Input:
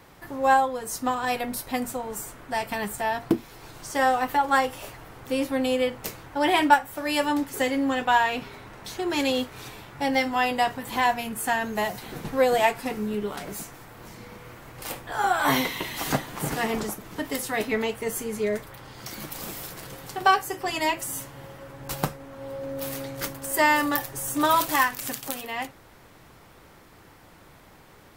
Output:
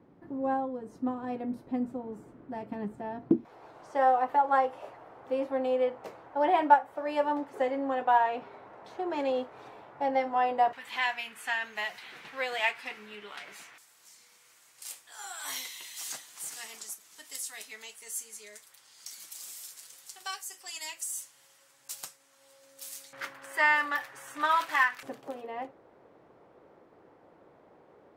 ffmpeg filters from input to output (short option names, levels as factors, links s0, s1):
-af "asetnsamples=n=441:p=0,asendcmd='3.45 bandpass f 670;10.73 bandpass f 2400;13.78 bandpass f 7600;23.13 bandpass f 1700;25.03 bandpass f 490',bandpass=f=260:t=q:w=1.4:csg=0"